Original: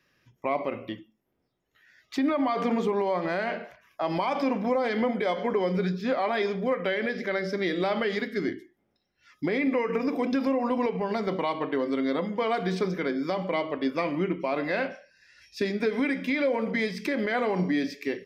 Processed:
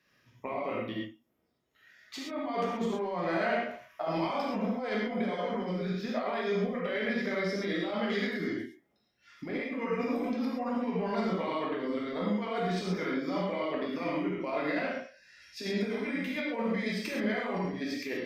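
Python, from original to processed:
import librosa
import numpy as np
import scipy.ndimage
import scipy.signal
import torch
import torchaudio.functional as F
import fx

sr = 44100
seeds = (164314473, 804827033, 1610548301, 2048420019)

y = fx.low_shelf(x, sr, hz=78.0, db=-6.5)
y = fx.over_compress(y, sr, threshold_db=-29.0, ratio=-0.5)
y = fx.rev_gated(y, sr, seeds[0], gate_ms=150, shape='flat', drr_db=-4.0)
y = F.gain(torch.from_numpy(y), -7.0).numpy()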